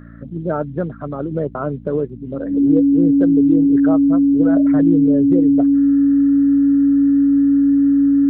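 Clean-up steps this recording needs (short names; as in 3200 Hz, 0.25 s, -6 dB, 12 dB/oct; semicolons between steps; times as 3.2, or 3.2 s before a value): de-hum 57.2 Hz, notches 5; notch 280 Hz, Q 30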